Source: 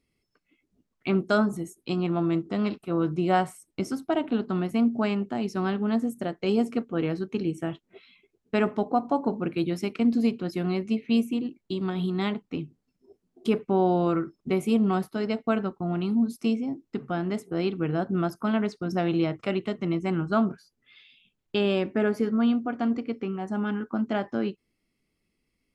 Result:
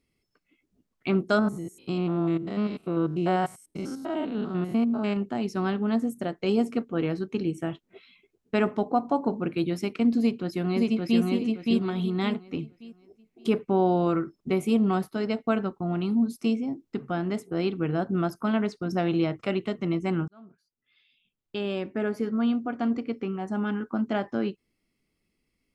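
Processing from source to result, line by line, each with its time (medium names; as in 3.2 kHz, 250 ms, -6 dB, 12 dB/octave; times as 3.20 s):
1.39–5.17 s: spectrogram pixelated in time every 100 ms
10.19–11.21 s: echo throw 570 ms, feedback 30%, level -1.5 dB
20.28–23.01 s: fade in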